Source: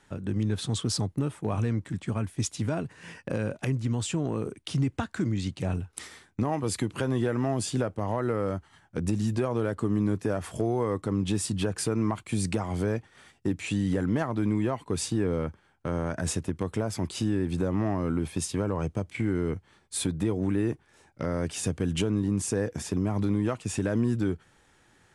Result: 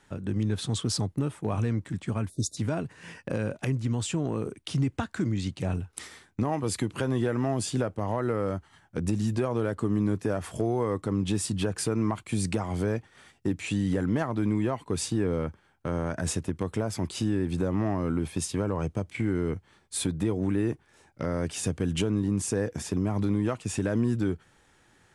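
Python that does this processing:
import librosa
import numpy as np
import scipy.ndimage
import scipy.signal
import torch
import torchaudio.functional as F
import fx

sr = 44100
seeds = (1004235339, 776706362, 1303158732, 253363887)

y = fx.spec_erase(x, sr, start_s=2.29, length_s=0.28, low_hz=670.0, high_hz=3500.0)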